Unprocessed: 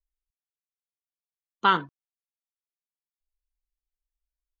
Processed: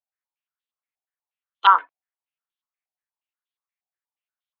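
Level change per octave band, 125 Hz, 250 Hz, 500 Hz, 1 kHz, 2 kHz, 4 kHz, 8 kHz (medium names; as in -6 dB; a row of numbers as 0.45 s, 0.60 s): under -30 dB, under -20 dB, -8.0 dB, +7.5 dB, +2.0 dB, +3.0 dB, no reading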